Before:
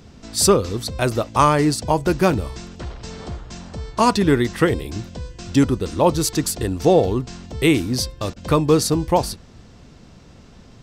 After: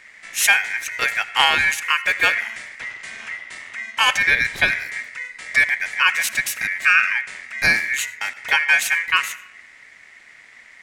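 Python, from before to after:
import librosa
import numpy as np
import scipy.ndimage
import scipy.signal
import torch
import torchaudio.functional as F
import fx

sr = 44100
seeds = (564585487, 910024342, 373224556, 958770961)

y = fx.rev_freeverb(x, sr, rt60_s=0.87, hf_ratio=0.35, predelay_ms=40, drr_db=17.5)
y = y * np.sin(2.0 * np.pi * 2000.0 * np.arange(len(y)) / sr)
y = F.gain(torch.from_numpy(y), 1.5).numpy()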